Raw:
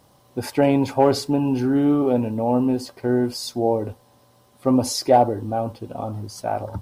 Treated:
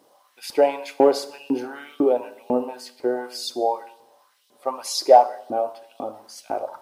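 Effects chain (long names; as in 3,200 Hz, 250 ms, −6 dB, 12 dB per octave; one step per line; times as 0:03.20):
auto-filter high-pass saw up 2 Hz 280–4,000 Hz
four-comb reverb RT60 0.74 s, combs from 25 ms, DRR 14 dB
level −3.5 dB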